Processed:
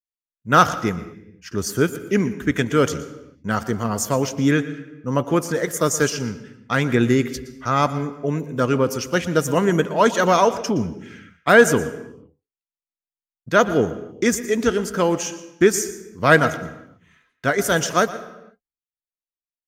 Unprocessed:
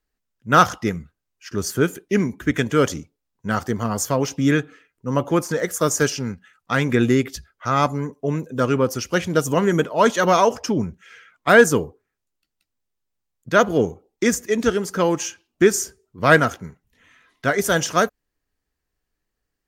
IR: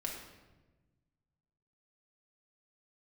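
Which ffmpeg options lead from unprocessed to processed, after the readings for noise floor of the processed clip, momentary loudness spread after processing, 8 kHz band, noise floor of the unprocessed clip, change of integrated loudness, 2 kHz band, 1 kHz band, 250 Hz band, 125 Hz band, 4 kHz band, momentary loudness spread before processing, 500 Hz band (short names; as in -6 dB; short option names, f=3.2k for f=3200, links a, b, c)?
under -85 dBFS, 14 LU, 0.0 dB, -80 dBFS, 0.0 dB, 0.0 dB, 0.0 dB, +0.5 dB, 0.0 dB, 0.0 dB, 12 LU, 0.0 dB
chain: -filter_complex "[0:a]agate=range=-33dB:threshold=-50dB:ratio=3:detection=peak,asplit=2[a][b];[1:a]atrim=start_sample=2205,afade=t=out:st=0.44:d=0.01,atrim=end_sample=19845,adelay=118[c];[b][c]afir=irnorm=-1:irlink=0,volume=-14.5dB[d];[a][d]amix=inputs=2:normalize=0"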